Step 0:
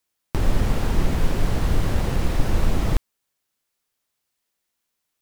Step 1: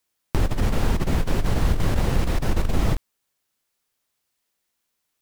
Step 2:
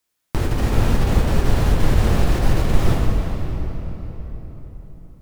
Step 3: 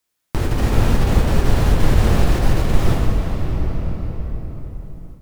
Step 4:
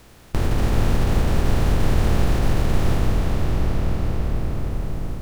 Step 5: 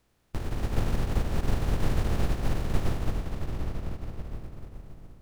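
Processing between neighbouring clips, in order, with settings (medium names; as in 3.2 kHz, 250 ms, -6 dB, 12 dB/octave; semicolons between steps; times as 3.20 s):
compressor with a negative ratio -18 dBFS, ratio -0.5
reverberation RT60 4.2 s, pre-delay 4 ms, DRR -2 dB
level rider gain up to 6 dB
spectral levelling over time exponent 0.4; trim -7.5 dB
upward expansion 2.5:1, over -25 dBFS; trim -3.5 dB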